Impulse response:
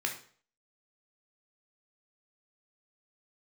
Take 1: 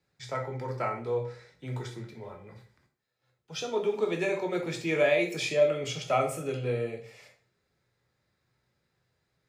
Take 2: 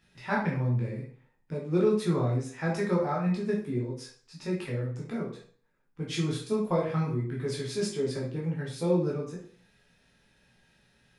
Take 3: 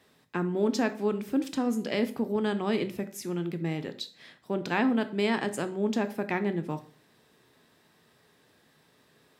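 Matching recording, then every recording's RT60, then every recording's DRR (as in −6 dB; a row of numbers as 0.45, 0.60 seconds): 1; 0.45, 0.45, 0.45 seconds; 2.5, −4.0, 10.0 decibels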